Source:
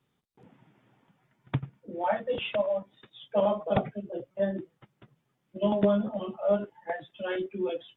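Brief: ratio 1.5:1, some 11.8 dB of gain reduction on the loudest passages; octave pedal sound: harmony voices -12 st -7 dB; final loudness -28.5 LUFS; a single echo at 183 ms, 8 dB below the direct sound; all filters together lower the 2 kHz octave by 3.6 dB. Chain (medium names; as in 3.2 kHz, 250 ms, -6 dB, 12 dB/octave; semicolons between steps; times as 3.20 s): peaking EQ 2 kHz -5 dB; compression 1.5:1, threshold -54 dBFS; delay 183 ms -8 dB; harmony voices -12 st -7 dB; trim +11.5 dB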